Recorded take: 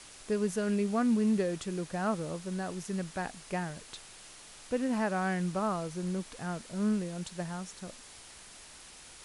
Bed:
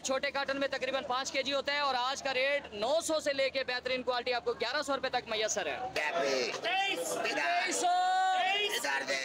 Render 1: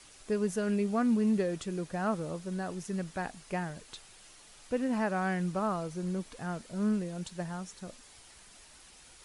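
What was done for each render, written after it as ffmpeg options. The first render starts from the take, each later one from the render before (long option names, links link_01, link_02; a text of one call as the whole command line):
ffmpeg -i in.wav -af "afftdn=noise_reduction=6:noise_floor=-52" out.wav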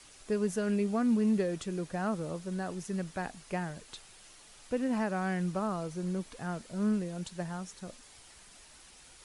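ffmpeg -i in.wav -filter_complex "[0:a]acrossover=split=440|3000[link_01][link_02][link_03];[link_02]acompressor=threshold=-32dB:ratio=6[link_04];[link_01][link_04][link_03]amix=inputs=3:normalize=0" out.wav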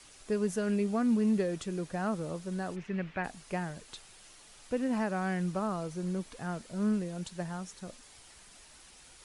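ffmpeg -i in.wav -filter_complex "[0:a]asplit=3[link_01][link_02][link_03];[link_01]afade=type=out:start_time=2.75:duration=0.02[link_04];[link_02]lowpass=frequency=2400:width_type=q:width=2.5,afade=type=in:start_time=2.75:duration=0.02,afade=type=out:start_time=3.23:duration=0.02[link_05];[link_03]afade=type=in:start_time=3.23:duration=0.02[link_06];[link_04][link_05][link_06]amix=inputs=3:normalize=0" out.wav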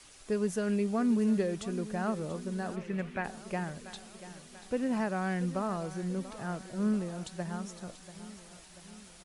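ffmpeg -i in.wav -af "aecho=1:1:687|1374|2061|2748|3435|4122:0.188|0.105|0.0591|0.0331|0.0185|0.0104" out.wav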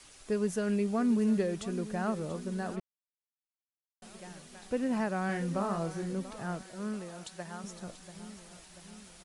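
ffmpeg -i in.wav -filter_complex "[0:a]asettb=1/sr,asplit=3[link_01][link_02][link_03];[link_01]atrim=end=5.264[link_04];[link_02]atrim=start=5.26:end=6.13,asetpts=PTS-STARTPTS,afade=type=in:duration=0.004:curve=qsin,afade=type=out:start_time=0.866:duration=0.004:curve=qsin,asplit=2[link_05][link_06];[link_06]adelay=30,volume=-5dB[link_07];[link_05][link_07]amix=inputs=2:normalize=0,atrim=end_sample=38367[link_08];[link_03]atrim=start=6.126[link_09];[link_04][link_08]acrossfade=duration=0.004:curve1=hsin:curve2=qsin[link_10];[link_10][link_09]acrossfade=duration=0.004:curve1=qsin:curve2=hsin,asettb=1/sr,asplit=3[link_11][link_12][link_13];[link_11]atrim=end=6.634[link_14];[link_12]atrim=start=6.63:end=7.64,asetpts=PTS-STARTPTS,afade=type=in:duration=0.004:curve=qsin,afade=type=out:start_time=1.006:duration=0.004:curve=qsin,lowshelf=frequency=350:gain=-11[link_15];[link_13]atrim=start=7.636[link_16];[link_14][link_15]acrossfade=duration=0.004:curve1=hsin:curve2=qsin[link_17];[link_17][link_16]acrossfade=duration=0.004:curve1=qsin:curve2=hsin,asplit=3[link_18][link_19][link_20];[link_18]atrim=end=2.8,asetpts=PTS-STARTPTS,afade=type=out:start_time=2.796:duration=0.004:curve=hsin[link_21];[link_19]atrim=start=2.8:end=4.02,asetpts=PTS-STARTPTS,volume=0[link_22];[link_20]atrim=start=4.02,asetpts=PTS-STARTPTS,afade=type=in:duration=0.004:curve=hsin[link_23];[link_21][link_22][link_23]concat=n=3:v=0:a=1" out.wav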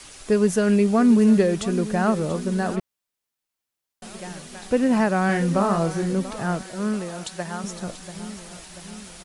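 ffmpeg -i in.wav -af "volume=11.5dB" out.wav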